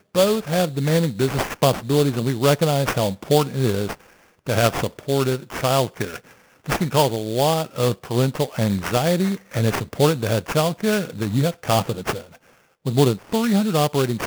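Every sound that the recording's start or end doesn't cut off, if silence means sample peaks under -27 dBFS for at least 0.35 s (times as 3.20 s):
4.47–6.16 s
6.66–12.18 s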